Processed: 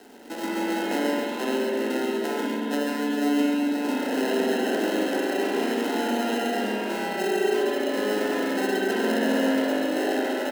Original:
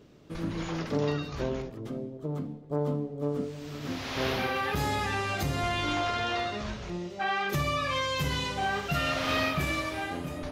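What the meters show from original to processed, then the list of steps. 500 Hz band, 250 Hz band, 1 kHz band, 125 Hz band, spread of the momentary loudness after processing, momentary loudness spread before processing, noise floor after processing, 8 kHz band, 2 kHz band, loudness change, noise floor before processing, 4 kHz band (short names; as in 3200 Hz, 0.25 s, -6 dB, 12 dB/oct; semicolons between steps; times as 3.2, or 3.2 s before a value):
+8.5 dB, +10.0 dB, +1.5 dB, under -10 dB, 4 LU, 9 LU, -30 dBFS, +5.0 dB, +2.5 dB, +5.5 dB, -42 dBFS, +1.0 dB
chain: sample-and-hold 38×; compressor, threshold -32 dBFS, peak gain reduction 9 dB; steep high-pass 210 Hz 72 dB/oct; on a send: echo 0.135 s -6.5 dB; on the sum: spring tank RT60 3.1 s, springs 38/45 ms, chirp 25 ms, DRR -4 dB; crackle 450/s -49 dBFS; gain +6 dB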